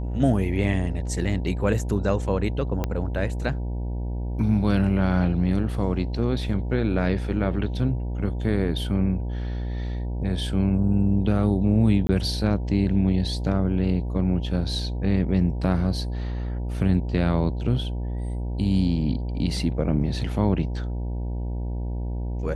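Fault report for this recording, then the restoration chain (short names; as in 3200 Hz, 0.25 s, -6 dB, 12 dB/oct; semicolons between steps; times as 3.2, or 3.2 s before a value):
buzz 60 Hz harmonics 16 -28 dBFS
2.84 pop -12 dBFS
12.07–12.09 gap 20 ms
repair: de-click; de-hum 60 Hz, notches 16; interpolate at 12.07, 20 ms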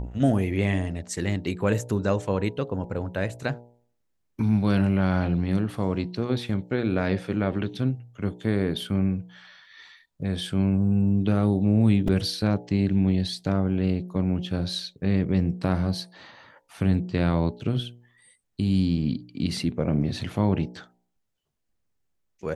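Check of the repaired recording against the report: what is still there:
2.84 pop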